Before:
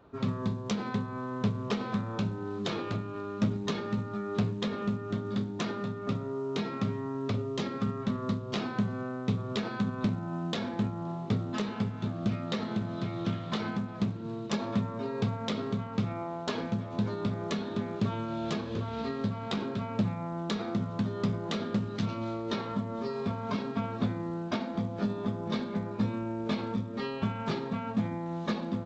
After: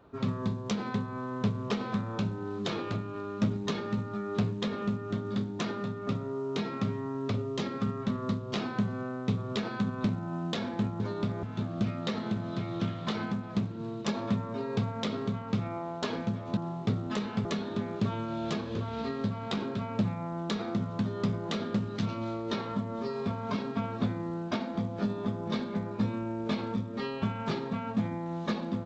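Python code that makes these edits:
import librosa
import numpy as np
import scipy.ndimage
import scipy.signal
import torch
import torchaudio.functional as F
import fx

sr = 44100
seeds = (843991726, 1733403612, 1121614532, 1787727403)

y = fx.edit(x, sr, fx.swap(start_s=11.0, length_s=0.88, other_s=17.02, other_length_s=0.43), tone=tone)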